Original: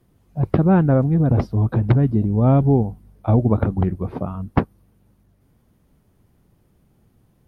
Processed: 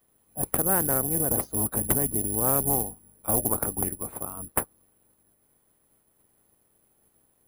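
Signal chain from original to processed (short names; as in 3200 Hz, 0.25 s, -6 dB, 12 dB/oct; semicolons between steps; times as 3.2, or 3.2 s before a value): spectral limiter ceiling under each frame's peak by 17 dB; careless resampling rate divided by 4×, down filtered, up zero stuff; Doppler distortion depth 0.25 ms; gain -13 dB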